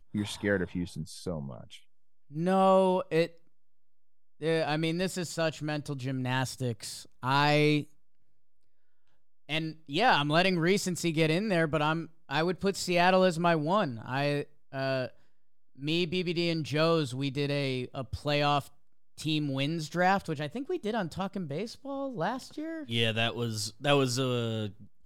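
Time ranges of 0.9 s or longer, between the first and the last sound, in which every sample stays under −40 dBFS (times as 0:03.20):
0:03.27–0:04.41
0:07.83–0:09.49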